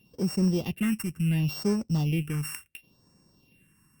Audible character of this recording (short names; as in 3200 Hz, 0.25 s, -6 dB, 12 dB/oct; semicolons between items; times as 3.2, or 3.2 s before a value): a buzz of ramps at a fixed pitch in blocks of 16 samples; phasing stages 4, 0.71 Hz, lowest notch 580–3000 Hz; Opus